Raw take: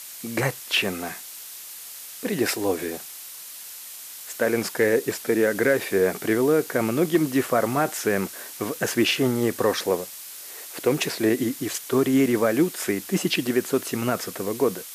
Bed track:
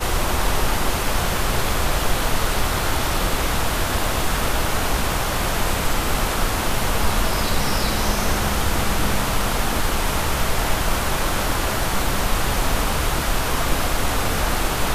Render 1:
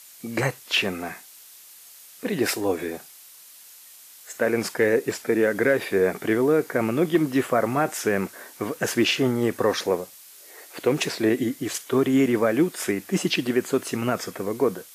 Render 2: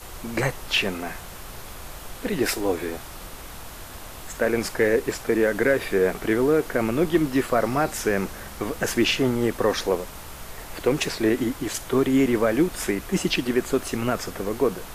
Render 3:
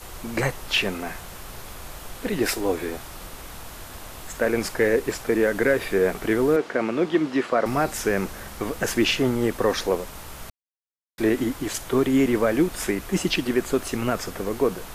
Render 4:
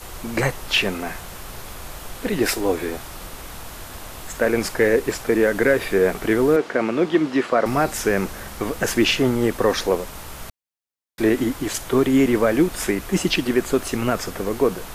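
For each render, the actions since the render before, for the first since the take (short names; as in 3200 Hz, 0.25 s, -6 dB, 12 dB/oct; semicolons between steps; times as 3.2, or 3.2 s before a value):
noise print and reduce 8 dB
add bed track -18.5 dB
6.56–7.66 BPF 210–5000 Hz; 10.5–11.18 mute
gain +3 dB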